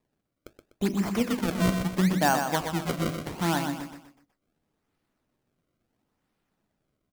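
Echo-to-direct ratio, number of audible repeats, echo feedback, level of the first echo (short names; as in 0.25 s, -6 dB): -6.0 dB, 4, 38%, -6.5 dB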